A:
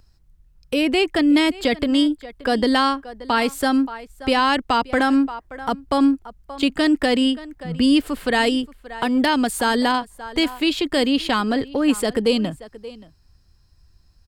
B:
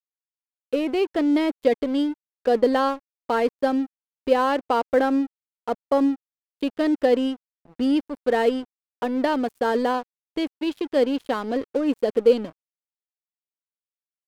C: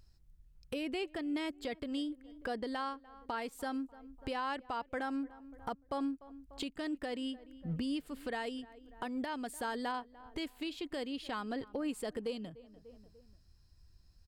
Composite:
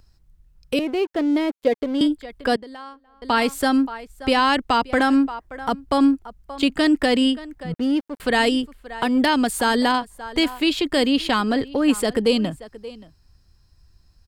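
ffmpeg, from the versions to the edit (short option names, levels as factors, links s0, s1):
-filter_complex "[1:a]asplit=2[s0][s1];[0:a]asplit=4[s2][s3][s4][s5];[s2]atrim=end=0.792[s6];[s0]atrim=start=0.788:end=2.012[s7];[s3]atrim=start=2.008:end=2.562[s8];[2:a]atrim=start=2.558:end=3.222[s9];[s4]atrim=start=3.218:end=7.742[s10];[s1]atrim=start=7.738:end=8.202[s11];[s5]atrim=start=8.198[s12];[s6][s7]acrossfade=d=0.004:c1=hsin:c2=hsin[s13];[s13][s8]acrossfade=d=0.004:c1=hsin:c2=hsin[s14];[s14][s9]acrossfade=d=0.004:c1=hsin:c2=hsin[s15];[s15][s10]acrossfade=d=0.004:c1=hsin:c2=hsin[s16];[s16][s11]acrossfade=d=0.004:c1=hsin:c2=hsin[s17];[s17][s12]acrossfade=d=0.004:c1=hsin:c2=hsin"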